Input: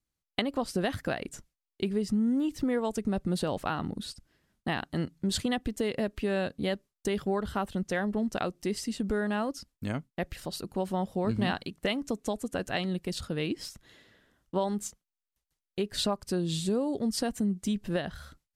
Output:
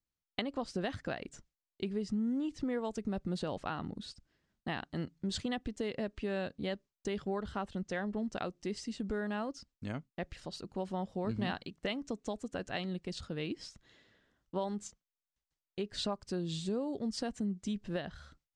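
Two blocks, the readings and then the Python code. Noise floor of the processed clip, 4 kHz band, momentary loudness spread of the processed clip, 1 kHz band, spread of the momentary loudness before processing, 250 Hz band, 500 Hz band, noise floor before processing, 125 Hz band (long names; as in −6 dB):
below −85 dBFS, −6.5 dB, 8 LU, −6.5 dB, 8 LU, −6.5 dB, −6.5 dB, below −85 dBFS, −6.5 dB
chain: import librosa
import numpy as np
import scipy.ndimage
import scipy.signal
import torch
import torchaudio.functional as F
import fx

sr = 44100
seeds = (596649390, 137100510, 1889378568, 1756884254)

y = scipy.signal.sosfilt(scipy.signal.butter(4, 7400.0, 'lowpass', fs=sr, output='sos'), x)
y = F.gain(torch.from_numpy(y), -6.5).numpy()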